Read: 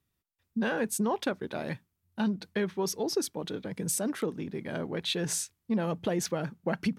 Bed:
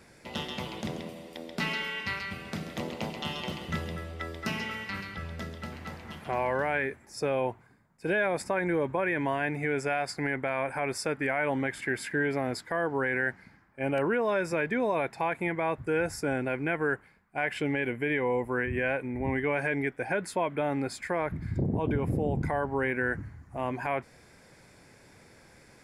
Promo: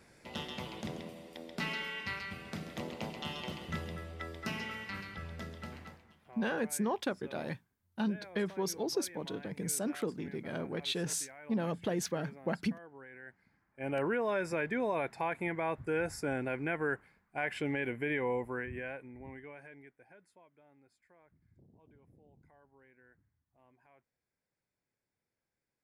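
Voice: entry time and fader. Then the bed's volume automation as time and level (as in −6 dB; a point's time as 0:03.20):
5.80 s, −4.0 dB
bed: 0:05.78 −5.5 dB
0:06.16 −23 dB
0:13.19 −23 dB
0:13.97 −5 dB
0:18.31 −5 dB
0:20.55 −35 dB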